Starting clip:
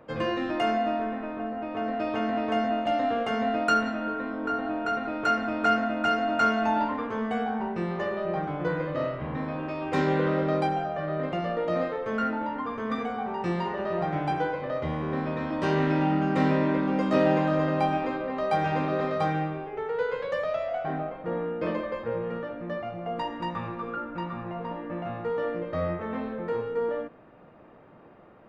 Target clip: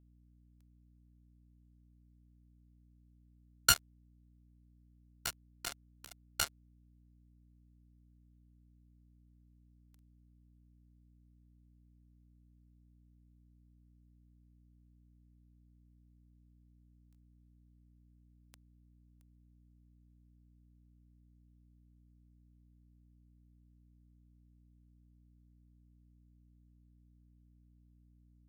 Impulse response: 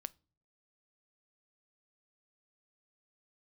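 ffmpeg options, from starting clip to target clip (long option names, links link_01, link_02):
-af "highpass=1300,highshelf=frequency=3500:width_type=q:width=1.5:gain=11.5,acrusher=bits=2:mix=0:aa=0.5,aeval=exprs='val(0)+0.000355*(sin(2*PI*60*n/s)+sin(2*PI*2*60*n/s)/2+sin(2*PI*3*60*n/s)/3+sin(2*PI*4*60*n/s)/4+sin(2*PI*5*60*n/s)/5)':channel_layout=same,volume=6dB"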